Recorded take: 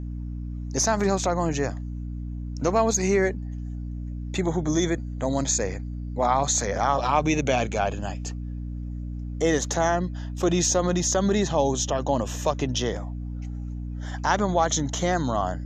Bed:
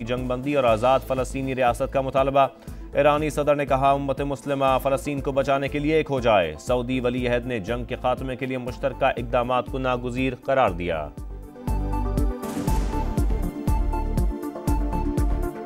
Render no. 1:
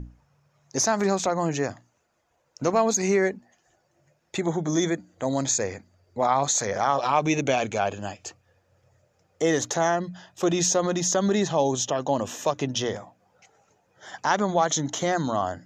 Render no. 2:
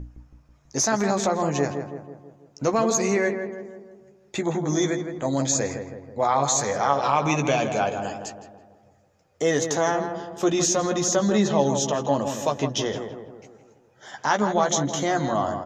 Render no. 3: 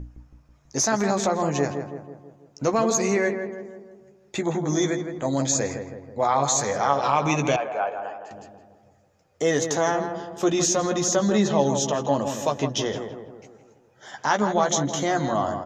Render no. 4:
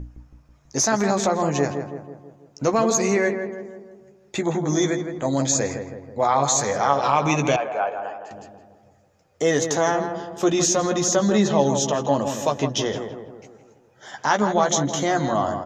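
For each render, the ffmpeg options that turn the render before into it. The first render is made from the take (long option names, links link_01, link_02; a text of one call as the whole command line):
ffmpeg -i in.wav -af "bandreject=frequency=60:width_type=h:width=6,bandreject=frequency=120:width_type=h:width=6,bandreject=frequency=180:width_type=h:width=6,bandreject=frequency=240:width_type=h:width=6,bandreject=frequency=300:width_type=h:width=6" out.wav
ffmpeg -i in.wav -filter_complex "[0:a]asplit=2[link_01][link_02];[link_02]adelay=14,volume=-7.5dB[link_03];[link_01][link_03]amix=inputs=2:normalize=0,asplit=2[link_04][link_05];[link_05]adelay=163,lowpass=frequency=1500:poles=1,volume=-6.5dB,asplit=2[link_06][link_07];[link_07]adelay=163,lowpass=frequency=1500:poles=1,volume=0.55,asplit=2[link_08][link_09];[link_09]adelay=163,lowpass=frequency=1500:poles=1,volume=0.55,asplit=2[link_10][link_11];[link_11]adelay=163,lowpass=frequency=1500:poles=1,volume=0.55,asplit=2[link_12][link_13];[link_13]adelay=163,lowpass=frequency=1500:poles=1,volume=0.55,asplit=2[link_14][link_15];[link_15]adelay=163,lowpass=frequency=1500:poles=1,volume=0.55,asplit=2[link_16][link_17];[link_17]adelay=163,lowpass=frequency=1500:poles=1,volume=0.55[link_18];[link_06][link_08][link_10][link_12][link_14][link_16][link_18]amix=inputs=7:normalize=0[link_19];[link_04][link_19]amix=inputs=2:normalize=0" out.wav
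ffmpeg -i in.wav -filter_complex "[0:a]asettb=1/sr,asplit=3[link_01][link_02][link_03];[link_01]atrim=end=7.564[link_04];[link_02]atrim=start=7.56:end=8.31,asetpts=PTS-STARTPTS,afade=type=in:duration=0.004:curve=qsin,afade=type=out:start_time=0.746:duration=0.004:curve=qsin,acrossover=split=450 2200:gain=0.0794 1 0.0631[link_05][link_06][link_07];[link_05][link_06][link_07]amix=inputs=3:normalize=0[link_08];[link_03]atrim=start=8.306[link_09];[link_04][link_08]acrossfade=duration=0.004:curve1=hsin:curve2=qsin[link_10];[link_10][link_09]acrossfade=duration=0.004:curve1=qsin:curve2=hsin" out.wav
ffmpeg -i in.wav -af "volume=2dB" out.wav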